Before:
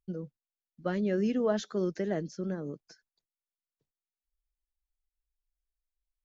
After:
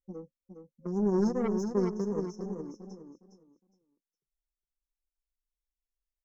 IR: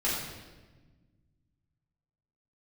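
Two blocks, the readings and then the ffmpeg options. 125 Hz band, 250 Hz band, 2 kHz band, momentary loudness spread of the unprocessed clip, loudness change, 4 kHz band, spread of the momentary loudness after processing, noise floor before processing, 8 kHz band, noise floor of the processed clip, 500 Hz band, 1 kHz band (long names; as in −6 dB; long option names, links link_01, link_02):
+1.0 dB, +1.5 dB, −9.0 dB, 14 LU, +1.5 dB, −8.5 dB, 19 LU, below −85 dBFS, can't be measured, below −85 dBFS, 0.0 dB, +1.0 dB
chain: -af "afftfilt=real='re*(1-between(b*sr/4096,530,5200))':imag='im*(1-between(b*sr/4096,530,5200))':win_size=4096:overlap=0.75,adynamicsmooth=sensitivity=2:basefreq=2800,crystalizer=i=8.5:c=0,aeval=exprs='0.158*(cos(1*acos(clip(val(0)/0.158,-1,1)))-cos(1*PI/2))+0.02*(cos(2*acos(clip(val(0)/0.158,-1,1)))-cos(2*PI/2))+0.00794*(cos(3*acos(clip(val(0)/0.158,-1,1)))-cos(3*PI/2))+0.001*(cos(4*acos(clip(val(0)/0.158,-1,1)))-cos(4*PI/2))+0.0126*(cos(7*acos(clip(val(0)/0.158,-1,1)))-cos(7*PI/2))':channel_layout=same,flanger=delay=3.3:depth=2.4:regen=-2:speed=0.36:shape=triangular,aecho=1:1:411|822|1233:0.447|0.0983|0.0216,volume=6dB"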